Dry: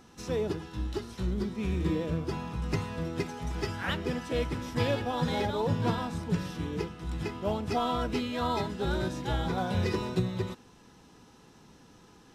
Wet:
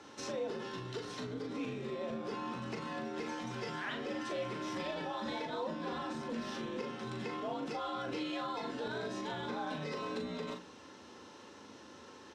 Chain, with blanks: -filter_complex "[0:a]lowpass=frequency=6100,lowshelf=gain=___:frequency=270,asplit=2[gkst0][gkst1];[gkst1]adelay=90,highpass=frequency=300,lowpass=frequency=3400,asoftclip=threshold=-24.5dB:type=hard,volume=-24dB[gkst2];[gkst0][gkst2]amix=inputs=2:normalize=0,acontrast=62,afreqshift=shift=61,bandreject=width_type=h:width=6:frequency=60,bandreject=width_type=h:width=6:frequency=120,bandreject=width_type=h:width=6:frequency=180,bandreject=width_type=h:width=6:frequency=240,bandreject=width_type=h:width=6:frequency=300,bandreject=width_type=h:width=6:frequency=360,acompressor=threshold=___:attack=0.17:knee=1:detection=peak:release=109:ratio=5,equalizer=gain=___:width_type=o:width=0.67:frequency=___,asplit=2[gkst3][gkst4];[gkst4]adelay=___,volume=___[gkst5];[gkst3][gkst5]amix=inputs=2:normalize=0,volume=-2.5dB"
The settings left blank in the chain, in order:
-4, -32dB, -8.5, 140, 39, -5.5dB